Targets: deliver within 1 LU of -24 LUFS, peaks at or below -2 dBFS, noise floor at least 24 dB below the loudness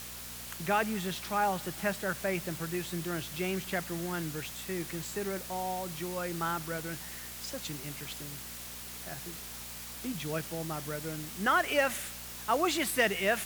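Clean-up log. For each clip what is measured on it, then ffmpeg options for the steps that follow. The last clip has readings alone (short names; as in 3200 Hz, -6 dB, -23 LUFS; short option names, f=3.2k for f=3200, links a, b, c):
hum 60 Hz; harmonics up to 240 Hz; hum level -50 dBFS; noise floor -44 dBFS; noise floor target -58 dBFS; loudness -33.5 LUFS; peak -14.5 dBFS; loudness target -24.0 LUFS
-> -af "bandreject=f=60:t=h:w=4,bandreject=f=120:t=h:w=4,bandreject=f=180:t=h:w=4,bandreject=f=240:t=h:w=4"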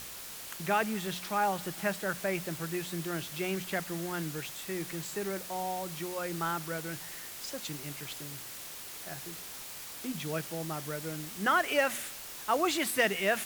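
hum none; noise floor -44 dBFS; noise floor target -58 dBFS
-> -af "afftdn=nr=14:nf=-44"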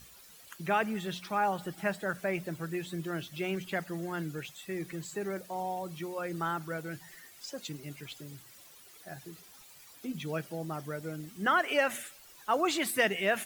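noise floor -55 dBFS; noise floor target -58 dBFS
-> -af "afftdn=nr=6:nf=-55"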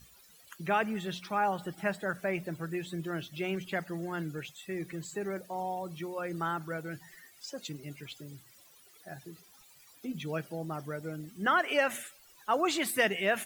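noise floor -59 dBFS; loudness -34.0 LUFS; peak -14.5 dBFS; loudness target -24.0 LUFS
-> -af "volume=10dB"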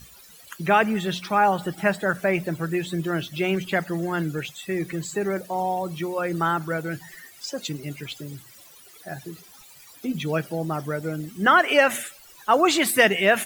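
loudness -24.0 LUFS; peak -4.5 dBFS; noise floor -49 dBFS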